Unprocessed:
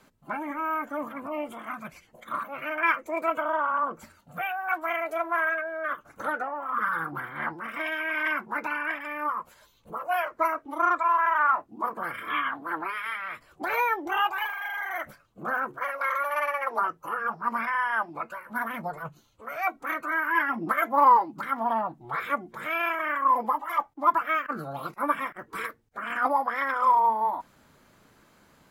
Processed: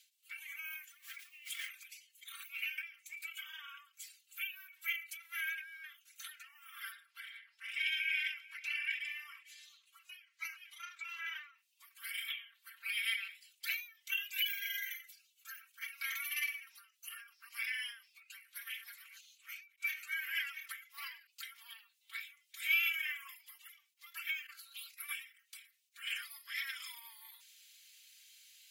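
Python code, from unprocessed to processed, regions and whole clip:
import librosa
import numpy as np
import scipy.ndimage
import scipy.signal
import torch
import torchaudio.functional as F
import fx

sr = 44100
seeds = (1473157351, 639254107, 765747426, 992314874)

y = fx.chain(x, sr, fx.delta_hold(step_db=-53.5),
    fx.over_compress(threshold_db=-42.0, ratio=-1.0),
    fx.peak_eq(hz=1700.0, db=11.5, octaves=0.82), at=(0.92, 1.69))
y = fx.chain(y, sr, fx.air_absorb(metres=50.0),
    fx.echo_single(ms=444, db=-19.5), at=(6.92, 11.58))
y = fx.chain(y, sr, fx.highpass(hz=1400.0, slope=6),
    fx.comb(ms=3.0, depth=0.68), at=(14.19, 15.62))
y = fx.chain(y, sr, fx.reverse_delay(ms=503, wet_db=-6.0),
    fx.high_shelf(hz=11000.0, db=-8.5), at=(18.25, 21.27))
y = scipy.signal.sosfilt(scipy.signal.butter(6, 2500.0, 'highpass', fs=sr, output='sos'), y)
y = y + 0.76 * np.pad(y, (int(4.4 * sr / 1000.0), 0))[:len(y)]
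y = fx.end_taper(y, sr, db_per_s=130.0)
y = F.gain(torch.from_numpy(y), 5.5).numpy()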